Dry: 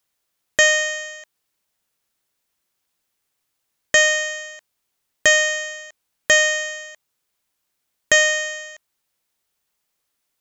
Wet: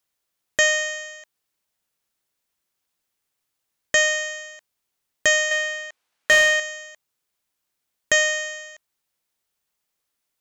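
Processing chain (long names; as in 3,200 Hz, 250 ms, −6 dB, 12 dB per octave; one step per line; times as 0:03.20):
0:05.51–0:06.60: mid-hump overdrive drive 15 dB, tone 2,700 Hz, clips at −1.5 dBFS
level −3.5 dB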